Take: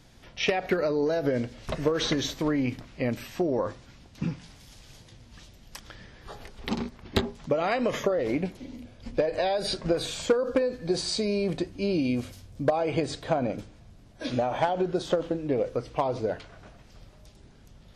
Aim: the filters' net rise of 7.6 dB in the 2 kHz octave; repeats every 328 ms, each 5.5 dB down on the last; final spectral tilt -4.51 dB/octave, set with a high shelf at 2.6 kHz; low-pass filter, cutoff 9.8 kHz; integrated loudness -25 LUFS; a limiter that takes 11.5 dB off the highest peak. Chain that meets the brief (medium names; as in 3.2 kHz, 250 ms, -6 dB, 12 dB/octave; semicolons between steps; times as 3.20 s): low-pass 9.8 kHz; peaking EQ 2 kHz +8 dB; treble shelf 2.6 kHz +3 dB; peak limiter -20.5 dBFS; feedback delay 328 ms, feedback 53%, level -5.5 dB; trim +4.5 dB